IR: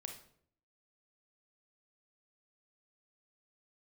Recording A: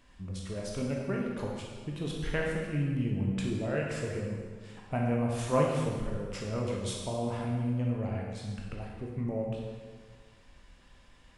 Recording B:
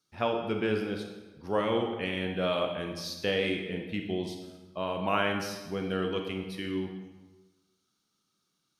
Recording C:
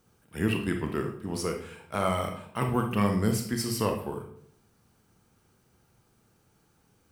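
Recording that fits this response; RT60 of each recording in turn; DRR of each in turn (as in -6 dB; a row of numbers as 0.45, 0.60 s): C; 1.6, 1.2, 0.60 s; -2.0, 3.0, 3.5 dB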